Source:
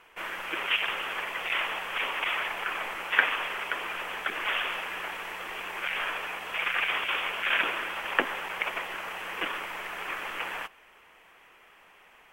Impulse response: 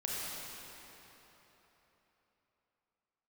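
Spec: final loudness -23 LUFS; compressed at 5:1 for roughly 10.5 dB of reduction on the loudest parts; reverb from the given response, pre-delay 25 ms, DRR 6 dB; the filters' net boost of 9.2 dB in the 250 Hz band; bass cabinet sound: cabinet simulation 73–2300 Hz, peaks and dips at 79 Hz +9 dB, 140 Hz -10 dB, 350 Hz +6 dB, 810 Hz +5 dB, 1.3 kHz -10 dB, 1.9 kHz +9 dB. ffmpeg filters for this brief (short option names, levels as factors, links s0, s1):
-filter_complex "[0:a]equalizer=f=250:t=o:g=9,acompressor=threshold=0.0282:ratio=5,asplit=2[s0][s1];[1:a]atrim=start_sample=2205,adelay=25[s2];[s1][s2]afir=irnorm=-1:irlink=0,volume=0.299[s3];[s0][s3]amix=inputs=2:normalize=0,highpass=f=73:w=0.5412,highpass=f=73:w=1.3066,equalizer=f=79:t=q:w=4:g=9,equalizer=f=140:t=q:w=4:g=-10,equalizer=f=350:t=q:w=4:g=6,equalizer=f=810:t=q:w=4:g=5,equalizer=f=1300:t=q:w=4:g=-10,equalizer=f=1900:t=q:w=4:g=9,lowpass=f=2300:w=0.5412,lowpass=f=2300:w=1.3066,volume=2.99"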